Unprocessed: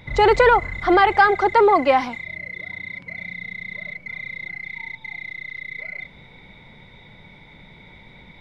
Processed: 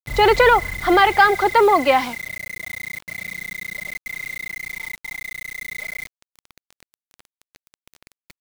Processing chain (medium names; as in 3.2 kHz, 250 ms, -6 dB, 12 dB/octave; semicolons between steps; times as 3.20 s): dynamic bell 3.5 kHz, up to +6 dB, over -36 dBFS, Q 0.86; bit crusher 6-bit